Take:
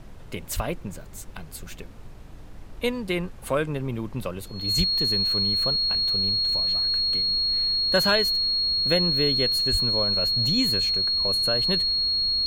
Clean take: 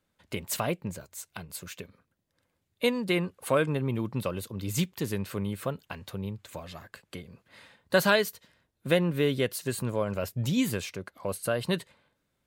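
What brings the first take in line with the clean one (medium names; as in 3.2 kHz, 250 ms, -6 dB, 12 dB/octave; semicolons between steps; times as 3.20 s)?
clip repair -10.5 dBFS; band-stop 4.3 kHz, Q 30; 0.55–0.67 s: high-pass 140 Hz 24 dB/octave; 4.77–4.89 s: high-pass 140 Hz 24 dB/octave; 9.71–9.83 s: high-pass 140 Hz 24 dB/octave; noise print and reduce 30 dB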